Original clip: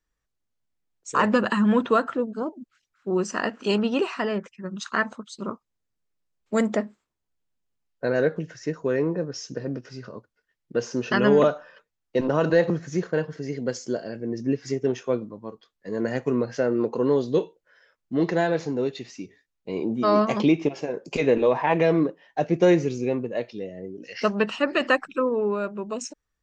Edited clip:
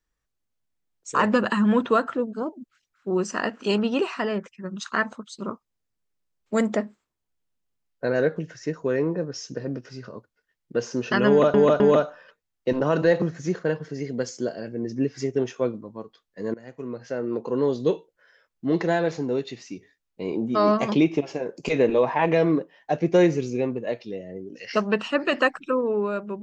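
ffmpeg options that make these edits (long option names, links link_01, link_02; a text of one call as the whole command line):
ffmpeg -i in.wav -filter_complex "[0:a]asplit=4[link_01][link_02][link_03][link_04];[link_01]atrim=end=11.542[link_05];[link_02]atrim=start=11.278:end=11.542[link_06];[link_03]atrim=start=11.278:end=16.02,asetpts=PTS-STARTPTS,afade=type=out:start_time=4.738:duration=0.004:curve=hsin:silence=0.0841395[link_07];[link_04]atrim=start=16.02,asetpts=PTS-STARTPTS,afade=type=in:duration=1.32:silence=0.0841395[link_08];[link_05][link_06]acrossfade=duration=0.004:curve1=hsin:curve2=hsin[link_09];[link_07][link_08]concat=n=2:v=0:a=1[link_10];[link_09][link_10]acrossfade=duration=0.004:curve1=hsin:curve2=hsin" out.wav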